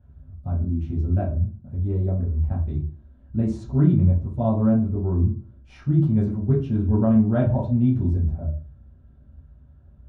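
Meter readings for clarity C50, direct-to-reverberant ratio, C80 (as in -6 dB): 7.0 dB, -6.0 dB, 11.5 dB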